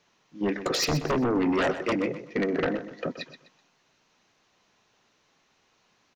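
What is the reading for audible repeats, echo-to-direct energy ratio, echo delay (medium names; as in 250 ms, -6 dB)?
3, -11.5 dB, 126 ms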